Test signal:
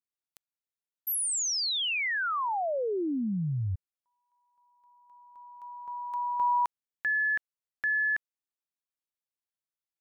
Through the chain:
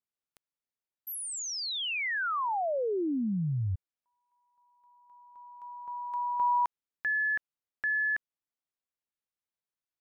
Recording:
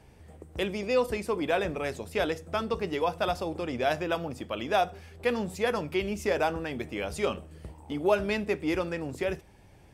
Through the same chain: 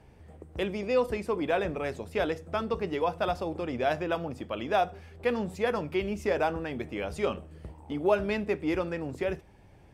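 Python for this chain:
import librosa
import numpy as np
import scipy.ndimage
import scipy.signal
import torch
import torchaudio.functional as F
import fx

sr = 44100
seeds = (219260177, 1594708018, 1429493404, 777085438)

y = fx.high_shelf(x, sr, hz=3700.0, db=-8.5)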